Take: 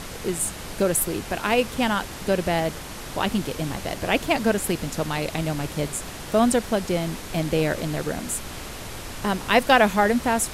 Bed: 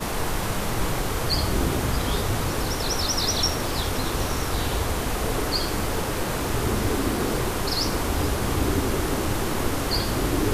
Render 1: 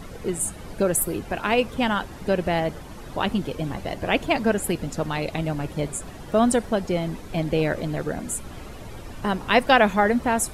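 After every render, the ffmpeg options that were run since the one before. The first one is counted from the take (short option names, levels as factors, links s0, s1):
-af "afftdn=nr=12:nf=-36"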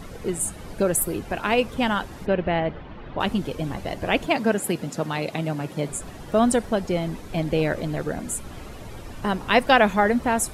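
-filter_complex "[0:a]asplit=3[s0][s1][s2];[s0]afade=t=out:st=2.25:d=0.02[s3];[s1]lowpass=f=3300:w=0.5412,lowpass=f=3300:w=1.3066,afade=t=in:st=2.25:d=0.02,afade=t=out:st=3.19:d=0.02[s4];[s2]afade=t=in:st=3.19:d=0.02[s5];[s3][s4][s5]amix=inputs=3:normalize=0,asettb=1/sr,asplit=3[s6][s7][s8];[s6]atrim=end=4.264[s9];[s7]atrim=start=4.26:end=5.89,asetpts=PTS-STARTPTS,afade=t=in:d=0.004:c=qsin,afade=t=out:st=1.626:d=0.004:c=qsin,highpass=f=120:w=0.5412,highpass=f=120:w=1.3066[s10];[s8]atrim=start=5.886[s11];[s9][s10]acrossfade=d=0.004:c1=hsin:c2=qsin[s12];[s12][s11]acrossfade=d=0.004:c1=qsin:c2=hsin"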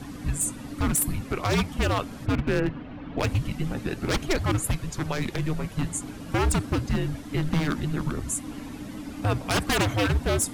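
-af "aeval=exprs='0.141*(abs(mod(val(0)/0.141+3,4)-2)-1)':c=same,afreqshift=-310"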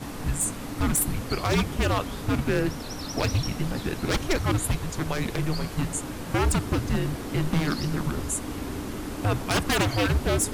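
-filter_complex "[1:a]volume=0.251[s0];[0:a][s0]amix=inputs=2:normalize=0"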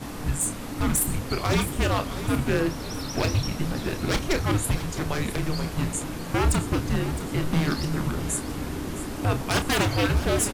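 -filter_complex "[0:a]asplit=2[s0][s1];[s1]adelay=30,volume=0.335[s2];[s0][s2]amix=inputs=2:normalize=0,aecho=1:1:662|1324|1986|2648:0.224|0.101|0.0453|0.0204"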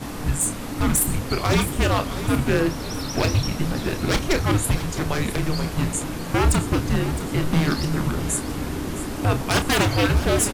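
-af "volume=1.5"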